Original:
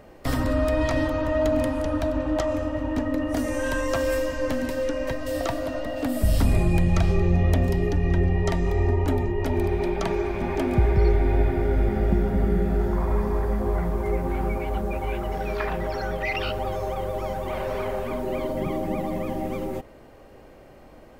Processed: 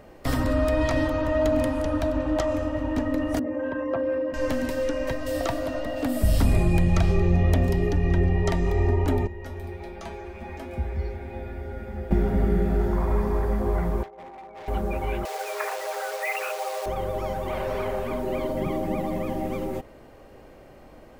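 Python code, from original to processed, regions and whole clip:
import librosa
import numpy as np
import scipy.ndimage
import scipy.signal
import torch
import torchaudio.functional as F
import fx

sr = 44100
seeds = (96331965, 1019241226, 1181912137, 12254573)

y = fx.chain(x, sr, fx.envelope_sharpen(power=1.5),
    fx.highpass(hz=170.0, slope=12),
    fx.air_absorb(metres=420.0), at=(3.39, 4.34))
y = fx.chain(y, sr, fx.hum_notches(base_hz=50, count=10),
    fx.comb_fb(f0_hz=75.0, decay_s=0.25, harmonics='odd', damping=0.0, mix_pct=90), at=(9.27, 12.11))
y = fx.chain(y, sr, fx.over_compress(threshold_db=-28.0, ratio=-0.5),
    fx.bandpass_q(hz=760.0, q=2.1),
    fx.clip_hard(threshold_db=-39.0), at=(14.03, 14.68))
y = fx.chain(y, sr, fx.resample_bad(factor=8, down='none', up='filtered'),
    fx.quant_dither(seeds[0], bits=6, dither='none'),
    fx.ellip_highpass(hz=440.0, order=4, stop_db=40), at=(15.25, 16.86))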